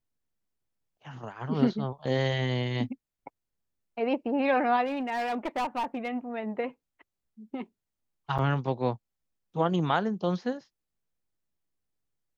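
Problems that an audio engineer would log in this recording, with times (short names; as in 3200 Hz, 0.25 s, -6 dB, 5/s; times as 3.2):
4.85–6.1 clipped -26 dBFS
8.38–8.39 gap 6.6 ms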